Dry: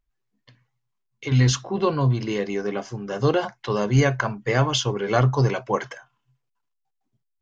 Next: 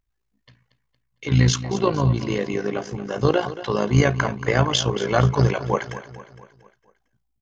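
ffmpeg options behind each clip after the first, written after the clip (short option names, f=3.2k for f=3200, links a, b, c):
-af "aecho=1:1:229|458|687|916|1145:0.2|0.0998|0.0499|0.0249|0.0125,tremolo=f=56:d=0.667,volume=4dB"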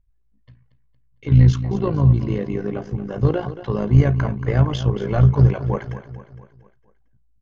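-af "acontrast=69,aemphasis=mode=reproduction:type=riaa,volume=-11.5dB"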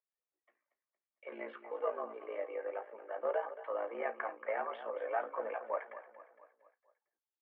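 -af "highpass=f=410:t=q:w=0.5412,highpass=f=410:t=q:w=1.307,lowpass=f=2.3k:t=q:w=0.5176,lowpass=f=2.3k:t=q:w=0.7071,lowpass=f=2.3k:t=q:w=1.932,afreqshift=97,flanger=delay=4.8:depth=4.7:regen=-53:speed=0.34:shape=triangular,volume=-5dB"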